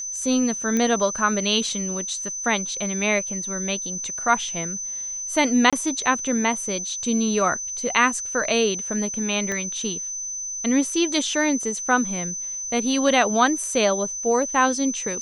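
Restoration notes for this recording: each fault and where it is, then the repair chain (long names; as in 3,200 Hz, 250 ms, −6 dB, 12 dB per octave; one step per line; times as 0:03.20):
whistle 6,100 Hz −28 dBFS
0:00.77: click −11 dBFS
0:05.70–0:05.73: drop-out 26 ms
0:09.52: click −14 dBFS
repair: click removal
notch filter 6,100 Hz, Q 30
repair the gap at 0:05.70, 26 ms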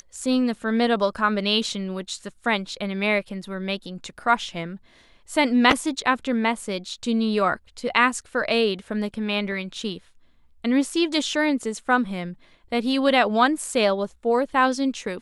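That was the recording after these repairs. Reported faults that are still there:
0:09.52: click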